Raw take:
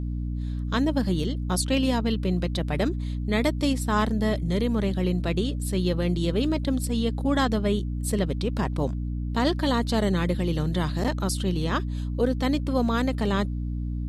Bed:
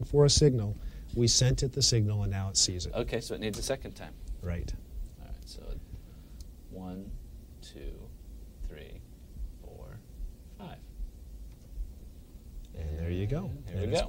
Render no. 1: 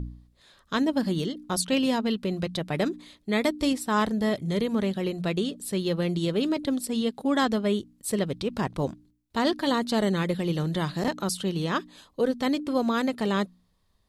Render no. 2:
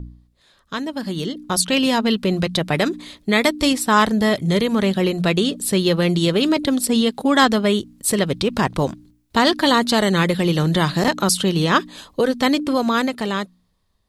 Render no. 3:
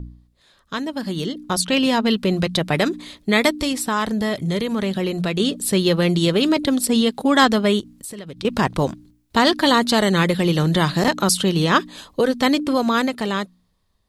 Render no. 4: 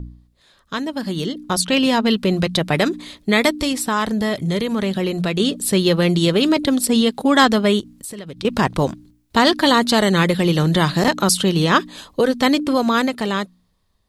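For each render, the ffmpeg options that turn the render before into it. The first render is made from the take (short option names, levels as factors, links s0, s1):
-af "bandreject=f=60:t=h:w=4,bandreject=f=120:t=h:w=4,bandreject=f=180:t=h:w=4,bandreject=f=240:t=h:w=4,bandreject=f=300:t=h:w=4"
-filter_complex "[0:a]acrossover=split=850[s0][s1];[s0]alimiter=limit=0.0668:level=0:latency=1:release=260[s2];[s2][s1]amix=inputs=2:normalize=0,dynaudnorm=f=220:g=13:m=5.01"
-filter_complex "[0:a]asettb=1/sr,asplit=3[s0][s1][s2];[s0]atrim=end=1.534[s3];[s1]atrim=start=1.53:end=2.05,asetpts=PTS-STARTPTS,afade=t=in:d=0.004:c=qsin,afade=t=out:st=0.516:d=0.004:c=qsin,highshelf=f=6000:g=-5[s4];[s2]atrim=start=2.046[s5];[s3][s4]acrossfade=d=0.004:c1=hsin:c2=qsin[s6];[s6][s5]acrossfade=d=0.004:c1=qsin:c2=hsin,asettb=1/sr,asplit=3[s7][s8][s9];[s7]atrim=end=3.564[s10];[s8]atrim=start=3.56:end=5.4,asetpts=PTS-STARTPTS,afade=t=in:d=0.004:c=qsin,afade=t=out:st=1.836:d=0.004:c=qsin,acompressor=threshold=0.0891:ratio=2:attack=3.2:release=140:knee=1:detection=peak[s11];[s9]atrim=start=5.396[s12];[s10][s11]acrossfade=d=0.004:c1=hsin:c2=qsin[s13];[s13][s12]acrossfade=d=0.004:c1=qsin:c2=hsin,asettb=1/sr,asplit=3[s14][s15][s16];[s14]atrim=end=7.804[s17];[s15]atrim=start=7.8:end=8.45,asetpts=PTS-STARTPTS,afade=t=in:d=0.004:c=qsin,afade=t=out:st=0.646:d=0.004:c=qsin,acompressor=threshold=0.0316:ratio=12:attack=3.2:release=140:knee=1:detection=peak[s18];[s16]atrim=start=8.446[s19];[s17][s18]acrossfade=d=0.004:c1=hsin:c2=qsin[s20];[s20][s19]acrossfade=d=0.004:c1=qsin:c2=hsin"
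-af "volume=1.19,alimiter=limit=0.794:level=0:latency=1"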